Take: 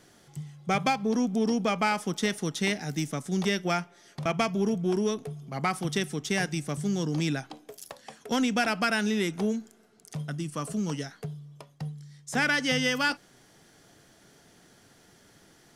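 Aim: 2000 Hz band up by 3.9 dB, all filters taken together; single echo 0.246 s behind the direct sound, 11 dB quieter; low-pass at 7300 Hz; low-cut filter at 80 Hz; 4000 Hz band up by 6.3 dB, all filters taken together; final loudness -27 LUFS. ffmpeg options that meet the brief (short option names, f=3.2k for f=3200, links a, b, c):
-af "highpass=80,lowpass=7.3k,equalizer=f=2k:t=o:g=3,equalizer=f=4k:t=o:g=8,aecho=1:1:246:0.282,volume=-1dB"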